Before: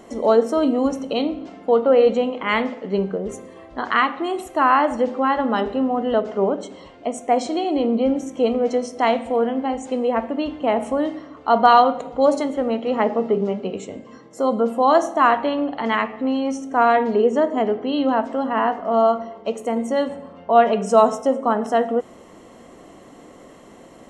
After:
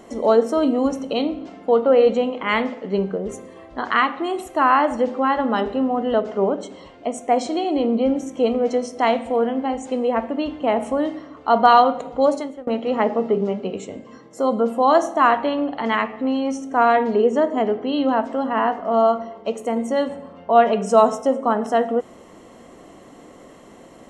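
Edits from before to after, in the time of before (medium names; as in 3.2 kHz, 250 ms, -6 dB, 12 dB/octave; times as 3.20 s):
12.21–12.67 s: fade out, to -23 dB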